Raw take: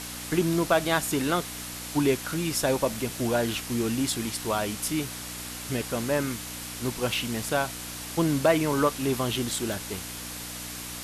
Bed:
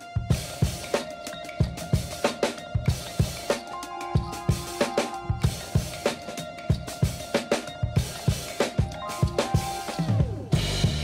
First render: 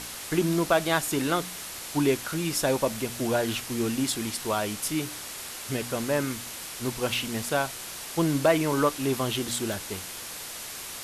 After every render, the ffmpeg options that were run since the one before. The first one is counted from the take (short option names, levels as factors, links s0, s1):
-af "bandreject=f=60:t=h:w=4,bandreject=f=120:t=h:w=4,bandreject=f=180:t=h:w=4,bandreject=f=240:t=h:w=4,bandreject=f=300:t=h:w=4"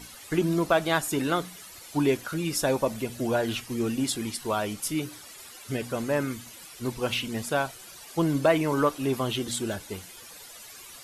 -af "afftdn=nr=13:nf=-39"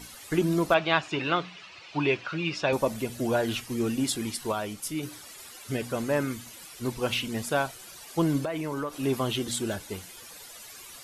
-filter_complex "[0:a]asettb=1/sr,asplit=3[s0][s1][s2];[s0]atrim=end=0.744[s3];[s1]atrim=start=0.74:end=2.73,asetpts=PTS-STARTPTS,afade=t=in:d=0.004:c=qsin,afade=t=out:st=1.986:d=0.004:c=qsin,highpass=110,equalizer=f=250:t=q:w=4:g=-10,equalizer=f=460:t=q:w=4:g=-3,equalizer=f=1100:t=q:w=4:g=3,equalizer=f=2600:t=q:w=4:g=10,lowpass=f=4800:w=0.5412,lowpass=f=4800:w=1.3066[s4];[s2]atrim=start=2.726[s5];[s3][s4]acrossfade=d=0.004:c1=hsin:c2=qsin[s6];[s6][s5]acrossfade=d=0.004:c1=qsin:c2=hsin,asettb=1/sr,asplit=3[s7][s8][s9];[s7]atrim=end=8.434[s10];[s8]atrim=start=8.43:end=9.03,asetpts=PTS-STARTPTS,afade=t=in:d=0.004:c=qsin,afade=t=out:st=0.596:d=0.004:c=qsin,acompressor=threshold=0.0398:ratio=6:attack=3.2:release=140:knee=1:detection=peak[s11];[s9]atrim=start=9.026[s12];[s10][s11]acrossfade=d=0.004:c1=hsin:c2=qsin[s13];[s13][s12]acrossfade=d=0.004:c1=qsin:c2=hsin,asplit=3[s14][s15][s16];[s14]atrim=end=4.522[s17];[s15]atrim=start=4.518:end=5.032,asetpts=PTS-STARTPTS,volume=0.668[s18];[s16]atrim=start=5.028[s19];[s17][s18]acrossfade=d=0.004:c1=hsin:c2=hsin[s20];[s20][s19]acrossfade=d=0.004:c1=hsin:c2=hsin"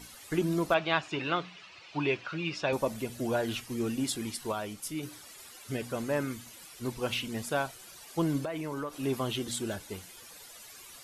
-af "volume=0.631"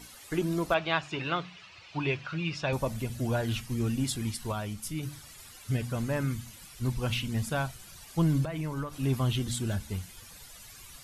-af "bandreject=f=72.86:t=h:w=4,bandreject=f=145.72:t=h:w=4,bandreject=f=218.58:t=h:w=4,asubboost=boost=7:cutoff=140"